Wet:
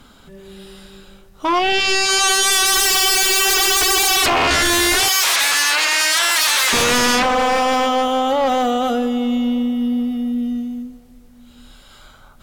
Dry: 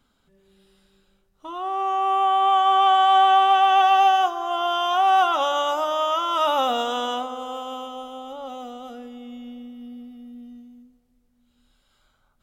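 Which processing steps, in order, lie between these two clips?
sine wavefolder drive 20 dB, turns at −9 dBFS
0:01.59–0:02.09: parametric band 1,200 Hz −11.5 dB 0.55 octaves
0:05.08–0:06.73: high-pass filter 850 Hz 12 dB per octave
level −3.5 dB

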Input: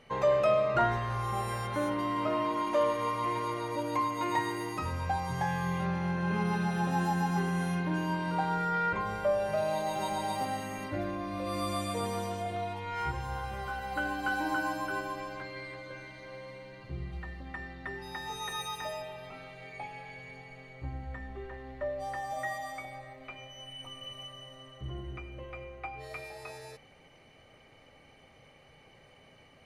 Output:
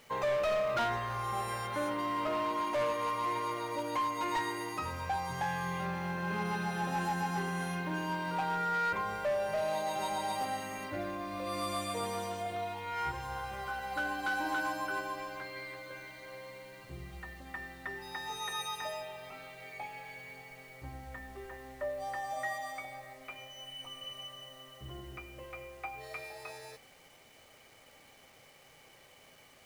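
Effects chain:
low-shelf EQ 320 Hz −8.5 dB
bit reduction 10 bits
hard clipping −28 dBFS, distortion −14 dB

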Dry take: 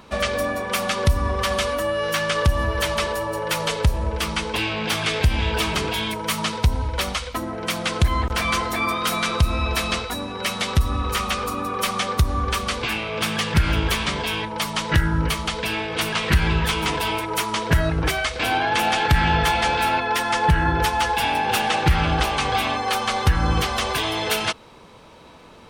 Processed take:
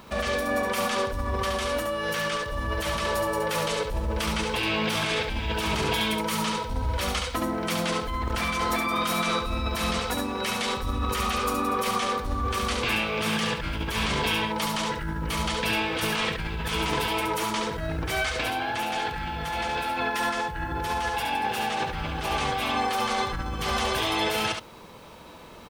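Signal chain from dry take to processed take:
compressor whose output falls as the input rises −25 dBFS, ratio −1
bit-depth reduction 10 bits, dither triangular
on a send: single-tap delay 70 ms −4.5 dB
on the sum: level −4 dB

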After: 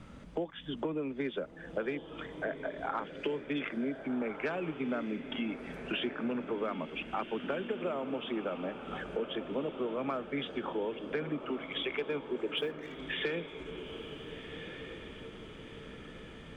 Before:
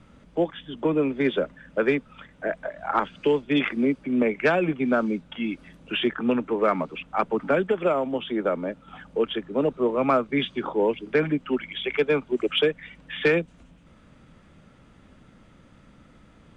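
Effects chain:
0:12.57–0:12.99: mu-law and A-law mismatch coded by A
downward compressor 5 to 1, threshold −36 dBFS, peak gain reduction 18 dB
on a send: feedback delay with all-pass diffusion 1,502 ms, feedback 51%, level −9 dB
on the sum: level +2 dB

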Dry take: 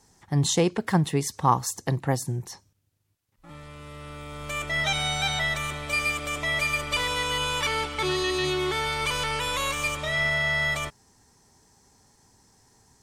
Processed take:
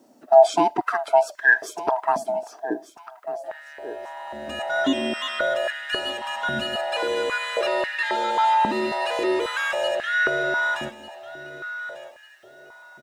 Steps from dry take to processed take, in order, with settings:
neighbouring bands swapped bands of 500 Hz
spectral tilt −3 dB per octave
bit-depth reduction 12 bits, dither triangular
on a send: repeating echo 1,196 ms, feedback 31%, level −14.5 dB
on the sum: high-pass on a step sequencer 3.7 Hz 240–1,700 Hz

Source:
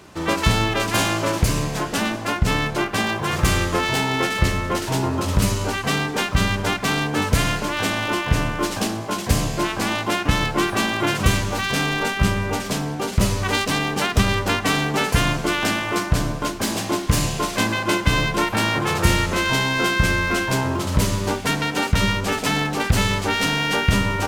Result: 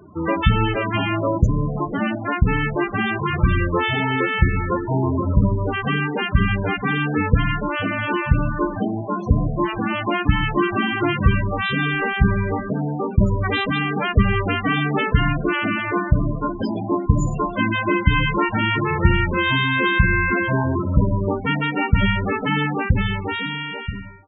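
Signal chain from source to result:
fade-out on the ending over 1.65 s
spectral peaks only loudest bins 16
level +3 dB

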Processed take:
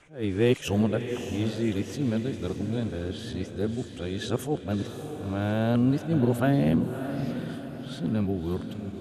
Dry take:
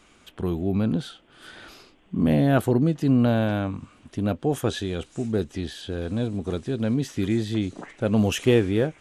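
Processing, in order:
played backwards from end to start
feedback delay with all-pass diffusion 613 ms, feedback 47%, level −8.5 dB
level that may rise only so fast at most 180 dB per second
level −3.5 dB

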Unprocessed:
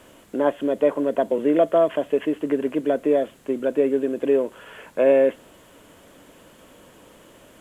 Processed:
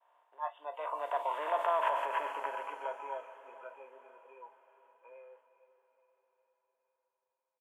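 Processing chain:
compressor on every frequency bin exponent 0.4
source passing by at 0:01.84, 16 m/s, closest 5 metres
downward expander −38 dBFS
noise reduction from a noise print of the clip's start 19 dB
brickwall limiter −14 dBFS, peak gain reduction 10 dB
four-pole ladder high-pass 890 Hz, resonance 80%
double-tracking delay 17 ms −12 dB
on a send: feedback delay with all-pass diffusion 472 ms, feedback 50%, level −14.5 dB
on the sum: level +5 dB

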